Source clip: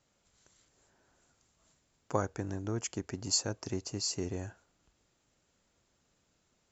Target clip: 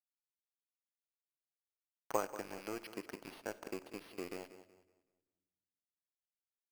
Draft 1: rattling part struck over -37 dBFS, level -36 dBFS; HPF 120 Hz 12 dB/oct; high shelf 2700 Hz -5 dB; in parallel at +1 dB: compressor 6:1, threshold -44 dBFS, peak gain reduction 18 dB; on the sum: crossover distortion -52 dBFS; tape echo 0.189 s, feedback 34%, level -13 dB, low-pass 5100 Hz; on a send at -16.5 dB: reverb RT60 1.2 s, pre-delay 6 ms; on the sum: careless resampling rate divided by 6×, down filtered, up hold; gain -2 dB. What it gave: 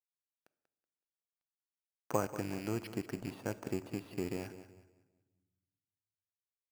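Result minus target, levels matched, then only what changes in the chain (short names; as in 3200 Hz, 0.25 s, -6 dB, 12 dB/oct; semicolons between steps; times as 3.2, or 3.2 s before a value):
125 Hz band +12.5 dB; crossover distortion: distortion -10 dB
change: HPF 400 Hz 12 dB/oct; change: crossover distortion -42 dBFS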